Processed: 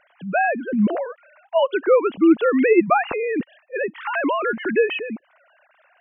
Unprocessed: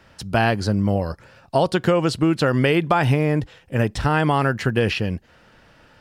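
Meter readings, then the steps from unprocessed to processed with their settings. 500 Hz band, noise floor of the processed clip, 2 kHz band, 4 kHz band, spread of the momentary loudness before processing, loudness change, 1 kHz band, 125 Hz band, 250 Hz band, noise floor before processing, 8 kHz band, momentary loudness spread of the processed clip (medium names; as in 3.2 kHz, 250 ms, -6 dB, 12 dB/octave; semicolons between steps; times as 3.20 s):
+2.5 dB, -61 dBFS, +0.5 dB, -7.5 dB, 7 LU, +0.5 dB, 0.0 dB, -17.0 dB, +1.0 dB, -53 dBFS, under -40 dB, 12 LU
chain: formants replaced by sine waves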